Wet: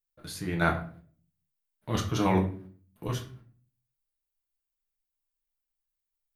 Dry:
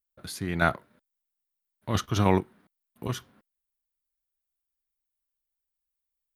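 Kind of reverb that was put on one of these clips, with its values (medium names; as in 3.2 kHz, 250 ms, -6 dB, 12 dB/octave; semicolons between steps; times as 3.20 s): simulated room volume 36 m³, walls mixed, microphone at 0.53 m; trim -4 dB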